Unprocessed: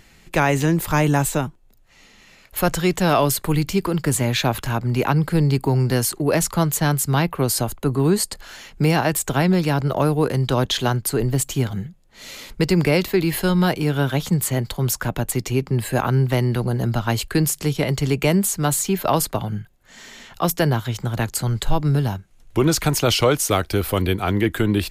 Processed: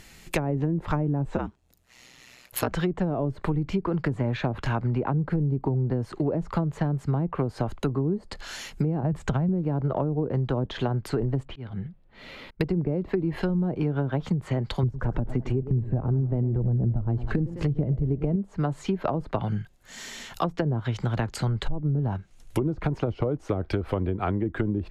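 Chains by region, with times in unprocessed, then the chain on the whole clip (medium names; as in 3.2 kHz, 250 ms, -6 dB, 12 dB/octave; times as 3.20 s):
1.36–2.72 s: high-pass 85 Hz 6 dB/octave + ring modulator 62 Hz
9.03–9.49 s: resonant low shelf 230 Hz +6 dB, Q 1.5 + compression 10:1, threshold -14 dBFS
11.45–12.61 s: distance through air 430 m + slow attack 423 ms
14.83–18.36 s: phaser 1 Hz, delay 4.7 ms, feedback 30% + bass shelf 130 Hz +9.5 dB + modulated delay 104 ms, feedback 59%, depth 140 cents, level -15.5 dB
whole clip: low-pass that closes with the level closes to 440 Hz, closed at -14 dBFS; treble shelf 4.8 kHz +5.5 dB; compression, threshold -22 dBFS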